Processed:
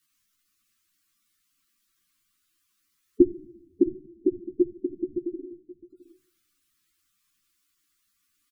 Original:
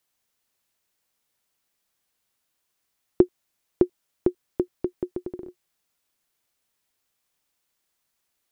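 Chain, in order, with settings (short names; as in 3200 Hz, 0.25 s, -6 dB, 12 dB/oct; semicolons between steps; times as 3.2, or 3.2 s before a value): elliptic band-stop 350–1100 Hz; notches 50/100/150 Hz; shoebox room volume 2000 m³, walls furnished, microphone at 0.37 m; spectral gate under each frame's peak -10 dB strong; echo 0.663 s -18 dB; ensemble effect; gain +8.5 dB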